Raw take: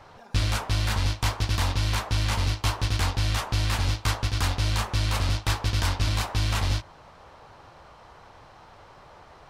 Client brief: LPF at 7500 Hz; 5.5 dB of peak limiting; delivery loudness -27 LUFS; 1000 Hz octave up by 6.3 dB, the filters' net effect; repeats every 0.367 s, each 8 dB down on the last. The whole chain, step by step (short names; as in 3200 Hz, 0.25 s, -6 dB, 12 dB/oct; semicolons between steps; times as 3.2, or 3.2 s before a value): LPF 7500 Hz; bell 1000 Hz +7.5 dB; limiter -17.5 dBFS; feedback echo 0.367 s, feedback 40%, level -8 dB